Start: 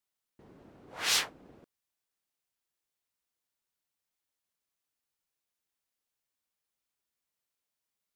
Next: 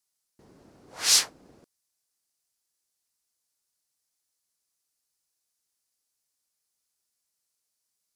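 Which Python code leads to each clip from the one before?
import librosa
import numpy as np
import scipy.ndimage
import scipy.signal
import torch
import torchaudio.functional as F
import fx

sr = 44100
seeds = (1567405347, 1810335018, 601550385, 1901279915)

y = fx.band_shelf(x, sr, hz=7200.0, db=10.5, octaves=1.7)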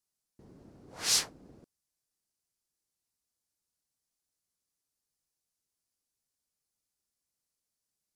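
y = fx.low_shelf(x, sr, hz=450.0, db=11.0)
y = y * librosa.db_to_amplitude(-7.0)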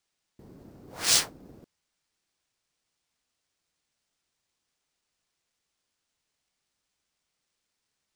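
y = fx.sample_hold(x, sr, seeds[0], rate_hz=14000.0, jitter_pct=0)
y = y * librosa.db_to_amplitude(5.0)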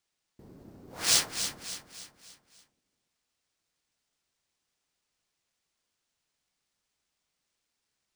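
y = fx.echo_feedback(x, sr, ms=287, feedback_pct=45, wet_db=-9)
y = y * librosa.db_to_amplitude(-1.5)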